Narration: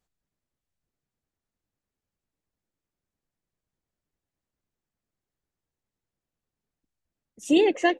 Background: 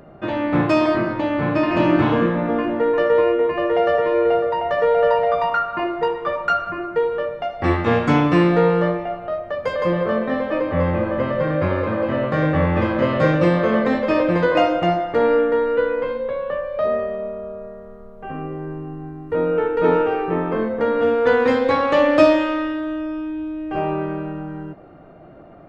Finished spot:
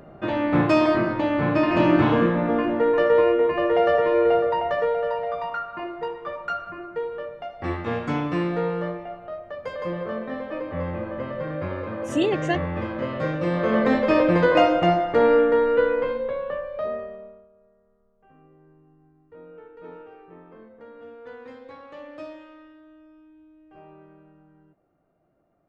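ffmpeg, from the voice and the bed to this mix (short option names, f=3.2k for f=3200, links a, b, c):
-filter_complex "[0:a]adelay=4650,volume=-3dB[a];[1:a]volume=7.5dB,afade=t=out:st=4.56:d=0.47:silence=0.398107,afade=t=in:st=13.43:d=0.48:silence=0.354813,afade=t=out:st=15.88:d=1.6:silence=0.0562341[b];[a][b]amix=inputs=2:normalize=0"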